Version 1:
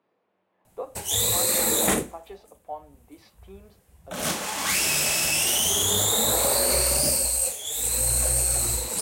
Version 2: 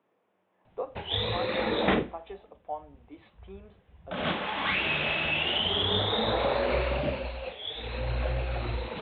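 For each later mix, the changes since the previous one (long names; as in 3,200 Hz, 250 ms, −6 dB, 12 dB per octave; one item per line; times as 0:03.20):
master: add Butterworth low-pass 3,700 Hz 96 dB per octave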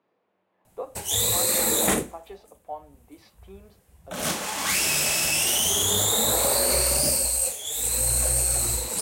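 master: remove Butterworth low-pass 3,700 Hz 96 dB per octave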